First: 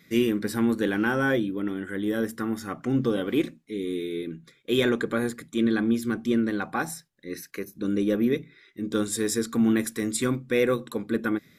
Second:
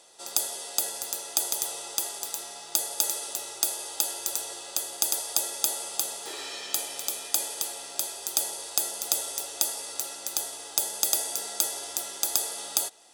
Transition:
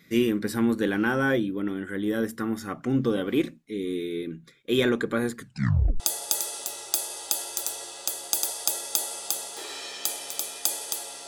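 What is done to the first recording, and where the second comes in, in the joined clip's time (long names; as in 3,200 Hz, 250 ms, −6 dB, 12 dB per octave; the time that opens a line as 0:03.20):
first
0:05.36: tape stop 0.64 s
0:06.00: continue with second from 0:02.69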